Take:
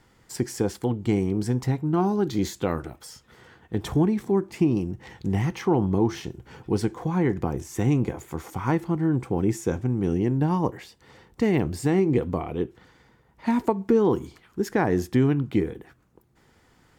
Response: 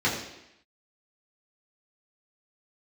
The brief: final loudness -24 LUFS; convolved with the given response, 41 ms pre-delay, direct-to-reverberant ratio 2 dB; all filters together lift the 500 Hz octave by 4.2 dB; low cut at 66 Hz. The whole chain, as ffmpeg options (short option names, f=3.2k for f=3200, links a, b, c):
-filter_complex "[0:a]highpass=66,equalizer=f=500:t=o:g=5.5,asplit=2[a][b];[1:a]atrim=start_sample=2205,adelay=41[c];[b][c]afir=irnorm=-1:irlink=0,volume=-15.5dB[d];[a][d]amix=inputs=2:normalize=0,volume=-3.5dB"